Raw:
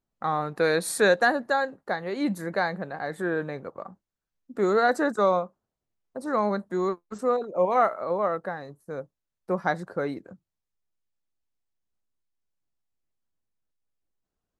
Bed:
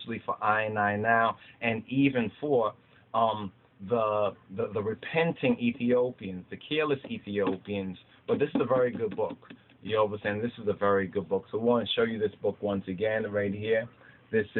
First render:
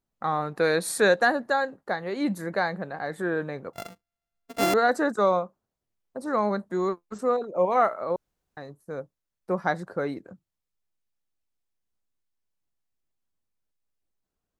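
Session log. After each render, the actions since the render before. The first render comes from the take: 3.73–4.74 s: sorted samples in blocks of 64 samples; 8.16–8.57 s: room tone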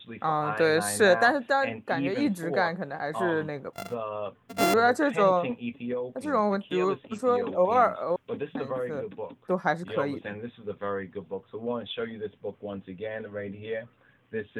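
add bed -6.5 dB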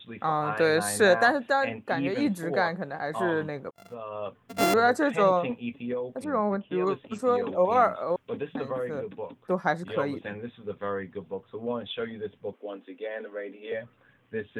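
3.71–4.27 s: fade in; 6.24–6.87 s: distance through air 480 m; 12.53–13.72 s: steep high-pass 230 Hz 72 dB/octave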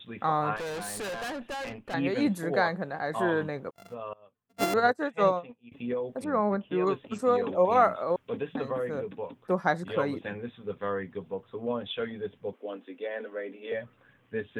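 0.56–1.94 s: valve stage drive 33 dB, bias 0.7; 4.13–5.72 s: upward expansion 2.5:1, over -36 dBFS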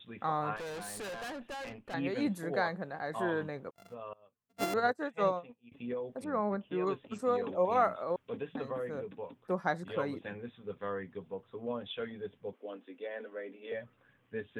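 trim -6 dB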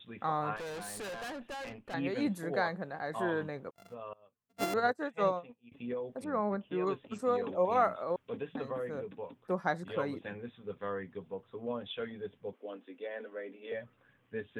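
no audible change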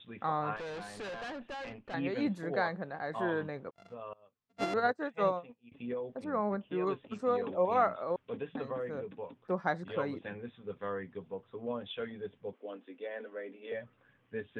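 low-pass 4.8 kHz 12 dB/octave

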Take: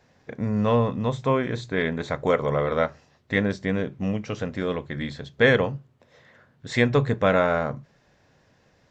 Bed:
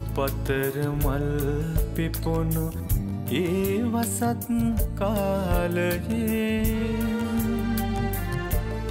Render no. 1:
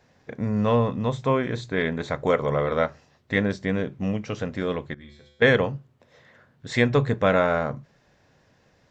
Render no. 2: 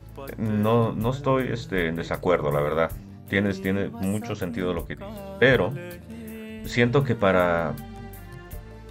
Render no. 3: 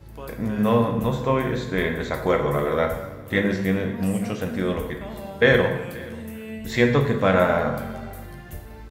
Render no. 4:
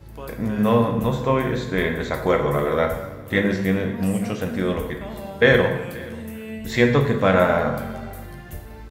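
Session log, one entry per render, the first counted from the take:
4.94–5.42 s: feedback comb 73 Hz, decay 0.99 s, harmonics odd, mix 90%
add bed -13 dB
delay 531 ms -21.5 dB; plate-style reverb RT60 0.96 s, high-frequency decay 0.8×, DRR 3 dB
trim +1.5 dB

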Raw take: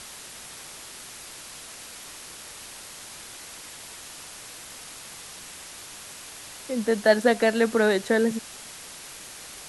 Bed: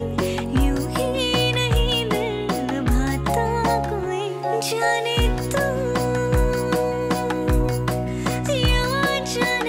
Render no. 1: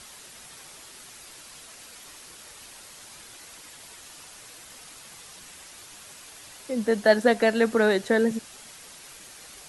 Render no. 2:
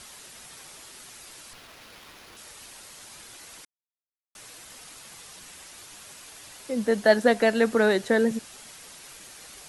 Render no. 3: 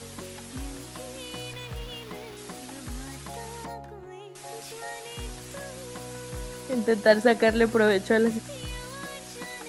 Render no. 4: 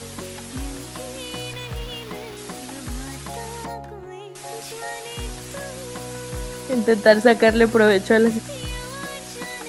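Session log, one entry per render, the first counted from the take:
noise reduction 6 dB, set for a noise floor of -43 dBFS
1.53–2.37 s: sliding maximum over 5 samples; 3.65–4.35 s: mute
add bed -18.5 dB
trim +6 dB; peak limiter -1 dBFS, peak gain reduction 1.5 dB

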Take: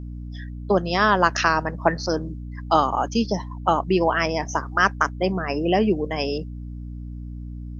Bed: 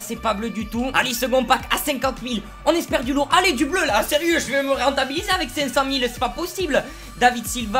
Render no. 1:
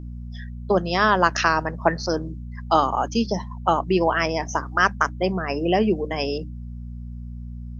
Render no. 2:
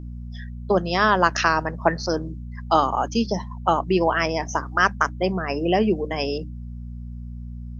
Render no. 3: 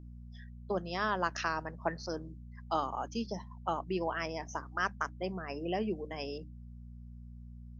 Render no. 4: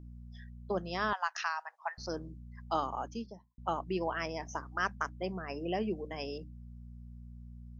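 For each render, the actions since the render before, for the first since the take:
hum notches 50/100/150/200/250/300 Hz
no audible change
trim -14 dB
1.13–1.98 s: elliptic high-pass 780 Hz, stop band 70 dB; 2.92–3.58 s: studio fade out

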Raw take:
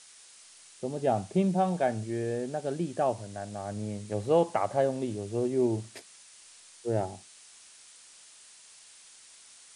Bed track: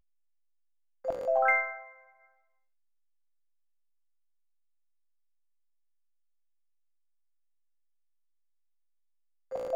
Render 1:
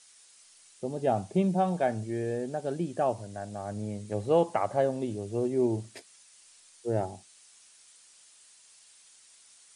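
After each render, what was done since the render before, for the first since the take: noise reduction 6 dB, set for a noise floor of -54 dBFS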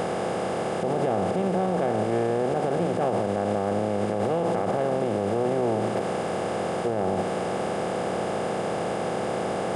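spectral levelling over time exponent 0.2; peak limiter -16 dBFS, peak gain reduction 11.5 dB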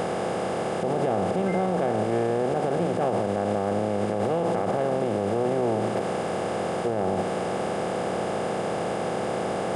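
add bed track -15 dB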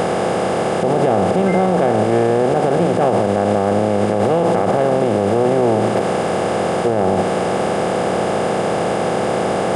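trim +9.5 dB

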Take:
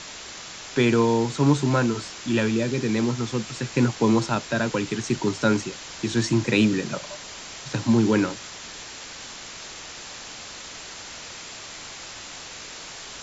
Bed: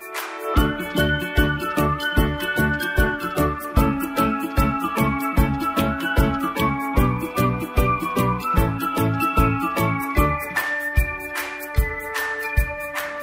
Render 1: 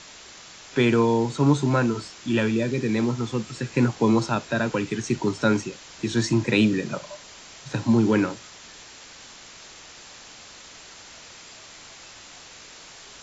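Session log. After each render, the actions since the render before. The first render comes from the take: noise print and reduce 6 dB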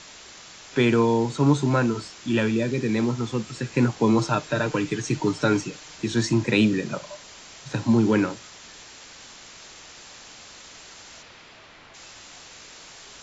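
4.18–5.96 s: comb 6.6 ms, depth 56%; 11.22–11.93 s: low-pass 4.1 kHz -> 2.6 kHz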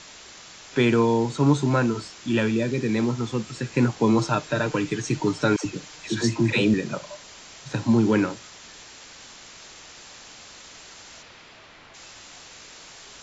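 5.56–6.74 s: phase dispersion lows, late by 92 ms, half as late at 670 Hz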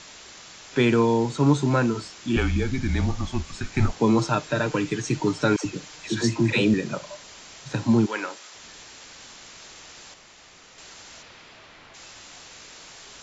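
2.36–3.93 s: frequency shift -140 Hz; 8.05–8.54 s: high-pass 1 kHz -> 330 Hz; 10.14–10.78 s: room tone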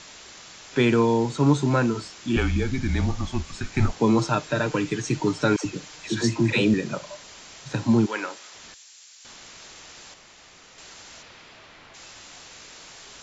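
8.74–9.25 s: differentiator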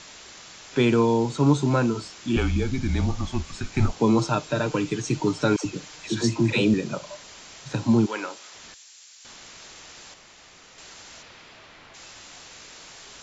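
dynamic bell 1.8 kHz, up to -6 dB, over -46 dBFS, Q 2.9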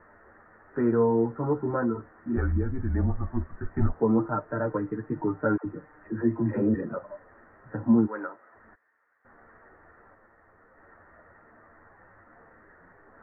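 chorus voices 6, 0.61 Hz, delay 11 ms, depth 2.3 ms; rippled Chebyshev low-pass 1.9 kHz, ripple 3 dB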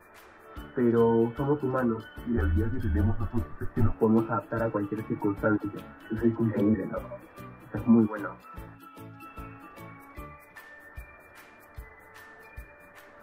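add bed -25 dB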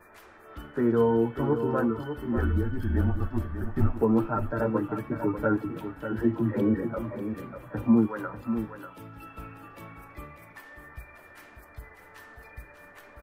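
delay 593 ms -9 dB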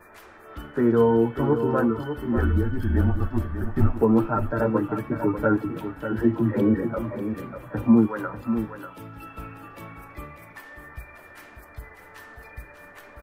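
trim +4 dB

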